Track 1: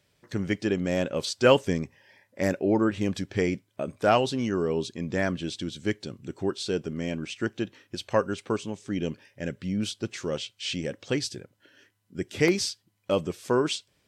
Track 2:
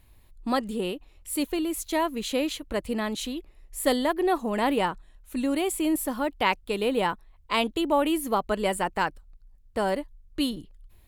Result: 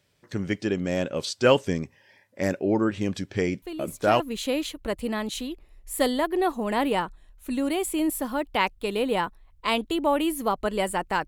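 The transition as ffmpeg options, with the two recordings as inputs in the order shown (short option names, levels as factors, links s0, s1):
-filter_complex "[1:a]asplit=2[s0][s1];[0:a]apad=whole_dur=11.27,atrim=end=11.27,atrim=end=4.202[s2];[s1]atrim=start=2.058:end=9.13[s3];[s0]atrim=start=1.48:end=2.06,asetpts=PTS-STARTPTS,volume=0.398,afade=t=in:d=0.004:c=hsin,afade=t=out:st=0.576:d=0.004:c=hsin,adelay=3620[s4];[s2][s3]acrossfade=d=0.004:c1=hsin:c2=hsin[s5];[s5][s4]amix=inputs=2:normalize=0"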